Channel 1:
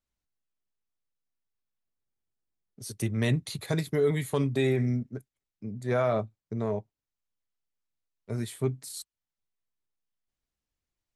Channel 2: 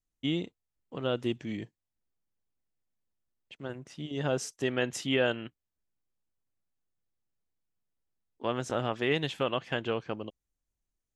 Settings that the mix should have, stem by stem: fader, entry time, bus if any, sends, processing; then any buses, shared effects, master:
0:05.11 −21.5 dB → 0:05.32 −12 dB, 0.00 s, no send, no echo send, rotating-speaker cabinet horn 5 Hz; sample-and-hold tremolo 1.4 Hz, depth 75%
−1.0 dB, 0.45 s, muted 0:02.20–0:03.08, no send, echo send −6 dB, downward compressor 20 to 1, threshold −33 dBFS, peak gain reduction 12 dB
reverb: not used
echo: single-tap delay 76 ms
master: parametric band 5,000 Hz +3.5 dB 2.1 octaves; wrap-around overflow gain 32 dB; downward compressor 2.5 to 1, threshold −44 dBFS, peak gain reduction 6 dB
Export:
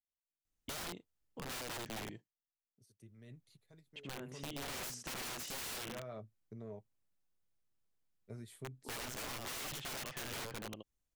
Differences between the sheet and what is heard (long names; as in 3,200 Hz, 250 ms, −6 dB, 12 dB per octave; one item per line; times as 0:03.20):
stem 2: missing downward compressor 20 to 1, threshold −33 dBFS, peak gain reduction 12 dB
master: missing parametric band 5,000 Hz +3.5 dB 2.1 octaves